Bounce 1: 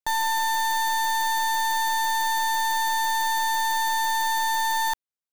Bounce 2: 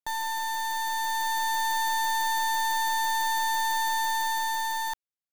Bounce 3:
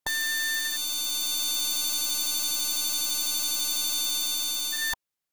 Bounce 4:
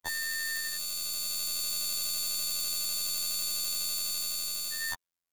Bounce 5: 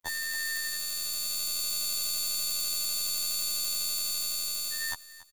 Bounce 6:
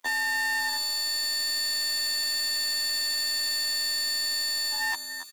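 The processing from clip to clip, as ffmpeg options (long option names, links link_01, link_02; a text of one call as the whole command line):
ffmpeg -i in.wav -af "dynaudnorm=framelen=210:gausssize=11:maxgain=4dB,volume=-6.5dB" out.wav
ffmpeg -i in.wav -af "afftfilt=real='re*lt(hypot(re,im),0.141)':imag='im*lt(hypot(re,im),0.141)':win_size=1024:overlap=0.75,volume=8dB" out.wav
ffmpeg -i in.wav -af "afftfilt=real='hypot(re,im)*cos(PI*b)':imag='0':win_size=2048:overlap=0.75,volume=-1dB" out.wav
ffmpeg -i in.wav -af "aecho=1:1:282|564|846:0.133|0.04|0.012" out.wav
ffmpeg -i in.wav -filter_complex "[0:a]asplit=2[link_01][link_02];[link_02]highpass=frequency=720:poles=1,volume=32dB,asoftclip=type=tanh:threshold=-11.5dB[link_03];[link_01][link_03]amix=inputs=2:normalize=0,lowpass=frequency=7200:poles=1,volume=-6dB,lowshelf=frequency=200:width_type=q:width=3:gain=-7,volume=-8.5dB" out.wav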